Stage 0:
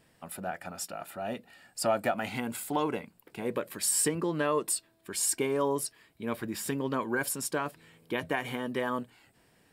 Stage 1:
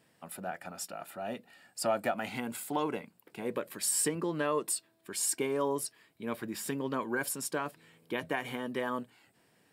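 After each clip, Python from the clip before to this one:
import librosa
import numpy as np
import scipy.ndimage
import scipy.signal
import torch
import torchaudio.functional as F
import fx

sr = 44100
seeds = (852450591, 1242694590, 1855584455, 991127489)

y = scipy.signal.sosfilt(scipy.signal.butter(2, 120.0, 'highpass', fs=sr, output='sos'), x)
y = y * librosa.db_to_amplitude(-2.5)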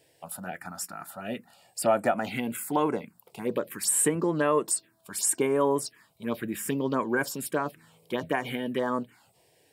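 y = fx.env_phaser(x, sr, low_hz=200.0, high_hz=5000.0, full_db=-27.5)
y = y * librosa.db_to_amplitude(7.0)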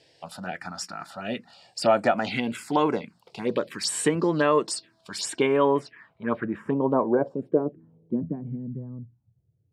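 y = fx.filter_sweep_lowpass(x, sr, from_hz=4800.0, to_hz=110.0, start_s=5.1, end_s=8.98, q=2.3)
y = y * librosa.db_to_amplitude(3.0)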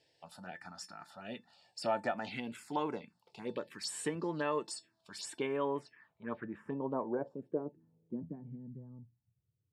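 y = fx.comb_fb(x, sr, f0_hz=890.0, decay_s=0.16, harmonics='all', damping=0.0, mix_pct=70)
y = y * librosa.db_to_amplitude(-3.5)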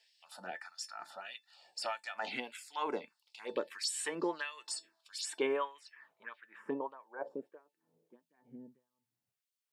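y = fx.filter_lfo_highpass(x, sr, shape='sine', hz=1.6, low_hz=330.0, high_hz=3200.0, q=1.0)
y = y * librosa.db_to_amplitude(3.5)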